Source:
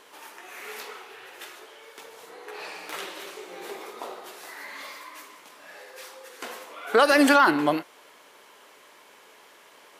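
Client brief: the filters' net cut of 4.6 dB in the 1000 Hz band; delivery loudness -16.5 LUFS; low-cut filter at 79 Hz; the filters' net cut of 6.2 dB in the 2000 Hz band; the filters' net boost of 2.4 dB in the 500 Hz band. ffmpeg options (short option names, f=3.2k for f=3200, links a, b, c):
-af "highpass=79,equalizer=f=500:t=o:g=4.5,equalizer=f=1k:t=o:g=-5,equalizer=f=2k:t=o:g=-7,volume=7dB"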